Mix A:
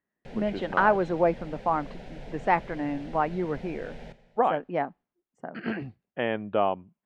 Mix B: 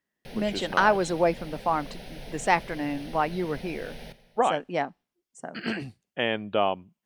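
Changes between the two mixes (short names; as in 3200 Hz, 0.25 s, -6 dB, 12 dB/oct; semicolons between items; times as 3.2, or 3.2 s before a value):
background: add running mean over 6 samples; master: remove LPF 1800 Hz 12 dB/oct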